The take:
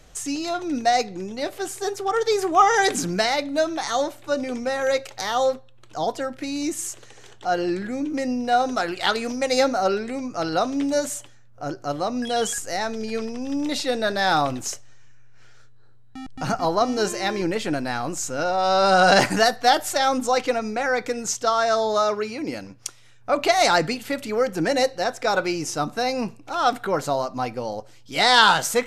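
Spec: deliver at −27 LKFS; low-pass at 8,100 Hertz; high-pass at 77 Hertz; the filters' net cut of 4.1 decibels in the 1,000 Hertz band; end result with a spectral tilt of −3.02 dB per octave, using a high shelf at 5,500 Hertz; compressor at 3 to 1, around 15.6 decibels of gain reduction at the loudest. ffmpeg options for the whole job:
ffmpeg -i in.wav -af "highpass=77,lowpass=8100,equalizer=frequency=1000:width_type=o:gain=-6.5,highshelf=frequency=5500:gain=5,acompressor=threshold=-35dB:ratio=3,volume=8dB" out.wav

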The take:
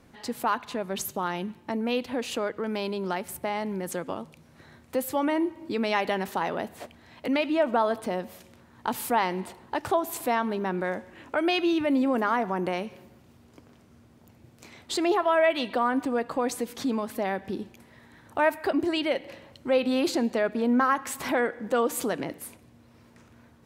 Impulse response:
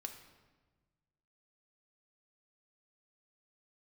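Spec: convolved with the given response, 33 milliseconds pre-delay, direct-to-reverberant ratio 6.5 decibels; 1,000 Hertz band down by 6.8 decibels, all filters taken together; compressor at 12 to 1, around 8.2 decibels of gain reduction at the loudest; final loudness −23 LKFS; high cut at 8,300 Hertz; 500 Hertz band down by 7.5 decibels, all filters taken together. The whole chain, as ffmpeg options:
-filter_complex "[0:a]lowpass=8300,equalizer=frequency=500:width_type=o:gain=-8,equalizer=frequency=1000:width_type=o:gain=-6,acompressor=threshold=-31dB:ratio=12,asplit=2[link_01][link_02];[1:a]atrim=start_sample=2205,adelay=33[link_03];[link_02][link_03]afir=irnorm=-1:irlink=0,volume=-3.5dB[link_04];[link_01][link_04]amix=inputs=2:normalize=0,volume=13dB"

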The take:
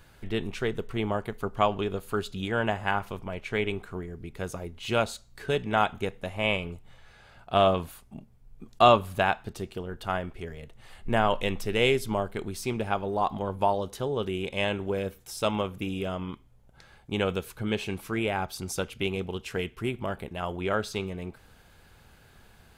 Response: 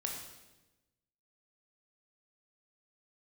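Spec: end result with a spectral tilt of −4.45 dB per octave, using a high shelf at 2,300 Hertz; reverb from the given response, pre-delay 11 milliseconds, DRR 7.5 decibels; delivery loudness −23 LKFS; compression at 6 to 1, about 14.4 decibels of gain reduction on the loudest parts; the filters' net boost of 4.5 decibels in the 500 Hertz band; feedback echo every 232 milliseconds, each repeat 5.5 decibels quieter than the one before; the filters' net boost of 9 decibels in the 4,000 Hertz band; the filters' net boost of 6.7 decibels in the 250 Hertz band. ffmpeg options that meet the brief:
-filter_complex "[0:a]equalizer=frequency=250:width_type=o:gain=8,equalizer=frequency=500:width_type=o:gain=3,highshelf=frequency=2300:gain=7.5,equalizer=frequency=4000:width_type=o:gain=5.5,acompressor=threshold=-24dB:ratio=6,aecho=1:1:232|464|696|928|1160|1392|1624:0.531|0.281|0.149|0.079|0.0419|0.0222|0.0118,asplit=2[link_01][link_02];[1:a]atrim=start_sample=2205,adelay=11[link_03];[link_02][link_03]afir=irnorm=-1:irlink=0,volume=-8.5dB[link_04];[link_01][link_04]amix=inputs=2:normalize=0,volume=5.5dB"

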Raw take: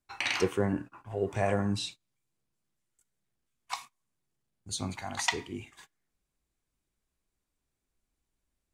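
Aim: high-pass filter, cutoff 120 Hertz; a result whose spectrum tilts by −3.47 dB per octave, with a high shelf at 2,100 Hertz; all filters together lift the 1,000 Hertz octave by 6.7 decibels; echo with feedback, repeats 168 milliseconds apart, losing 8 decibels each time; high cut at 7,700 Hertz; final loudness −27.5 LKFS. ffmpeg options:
ffmpeg -i in.wav -af "highpass=120,lowpass=7700,equalizer=frequency=1000:width_type=o:gain=8,highshelf=frequency=2100:gain=3.5,aecho=1:1:168|336|504|672|840:0.398|0.159|0.0637|0.0255|0.0102,volume=2.5dB" out.wav

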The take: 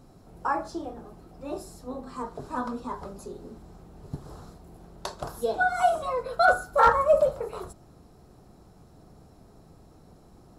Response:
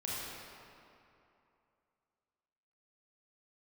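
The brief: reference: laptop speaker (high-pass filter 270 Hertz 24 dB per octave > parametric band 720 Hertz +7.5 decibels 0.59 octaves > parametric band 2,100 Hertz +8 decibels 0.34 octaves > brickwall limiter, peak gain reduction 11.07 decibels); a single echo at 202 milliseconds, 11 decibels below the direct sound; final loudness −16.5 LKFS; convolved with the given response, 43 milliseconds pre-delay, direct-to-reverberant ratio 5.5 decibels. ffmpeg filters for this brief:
-filter_complex "[0:a]aecho=1:1:202:0.282,asplit=2[link_01][link_02];[1:a]atrim=start_sample=2205,adelay=43[link_03];[link_02][link_03]afir=irnorm=-1:irlink=0,volume=-9dB[link_04];[link_01][link_04]amix=inputs=2:normalize=0,highpass=frequency=270:width=0.5412,highpass=frequency=270:width=1.3066,equalizer=frequency=720:width_type=o:width=0.59:gain=7.5,equalizer=frequency=2100:width_type=o:width=0.34:gain=8,volume=9.5dB,alimiter=limit=-4.5dB:level=0:latency=1"

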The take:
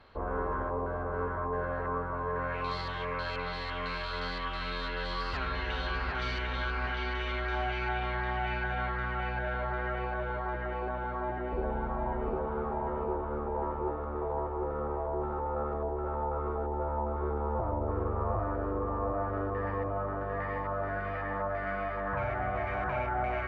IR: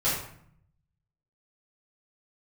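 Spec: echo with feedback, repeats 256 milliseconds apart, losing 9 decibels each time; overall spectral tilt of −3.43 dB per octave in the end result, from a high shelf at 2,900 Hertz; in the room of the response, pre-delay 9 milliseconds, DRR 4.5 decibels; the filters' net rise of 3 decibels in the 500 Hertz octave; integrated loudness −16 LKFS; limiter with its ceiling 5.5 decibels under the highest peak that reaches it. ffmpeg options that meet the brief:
-filter_complex "[0:a]equalizer=frequency=500:width_type=o:gain=4,highshelf=frequency=2900:gain=-7,alimiter=limit=-23.5dB:level=0:latency=1,aecho=1:1:256|512|768|1024:0.355|0.124|0.0435|0.0152,asplit=2[link_01][link_02];[1:a]atrim=start_sample=2205,adelay=9[link_03];[link_02][link_03]afir=irnorm=-1:irlink=0,volume=-16dB[link_04];[link_01][link_04]amix=inputs=2:normalize=0,volume=15.5dB"

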